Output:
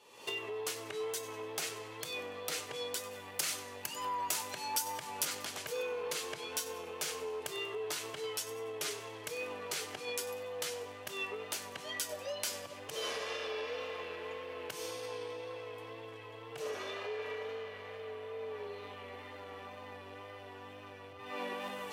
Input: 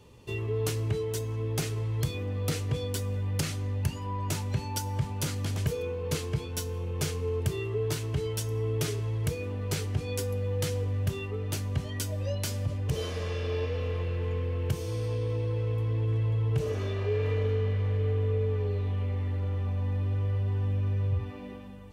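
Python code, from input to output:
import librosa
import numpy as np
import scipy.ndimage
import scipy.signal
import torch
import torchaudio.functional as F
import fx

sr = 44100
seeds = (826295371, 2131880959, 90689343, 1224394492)

y = fx.recorder_agc(x, sr, target_db=-20.0, rise_db_per_s=54.0, max_gain_db=30)
y = fx.high_shelf(y, sr, hz=7200.0, db=8.5, at=(3.11, 5.25))
y = 10.0 ** (-19.5 / 20.0) * np.tanh(y / 10.0 ** (-19.5 / 20.0))
y = scipy.signal.sosfilt(scipy.signal.butter(2, 640.0, 'highpass', fs=sr, output='sos'), y)
y = fx.echo_feedback(y, sr, ms=96, feedback_pct=40, wet_db=-16.5)
y = fx.wow_flutter(y, sr, seeds[0], rate_hz=2.1, depth_cents=29.0)
y = y * 10.0 ** (-1.5 / 20.0)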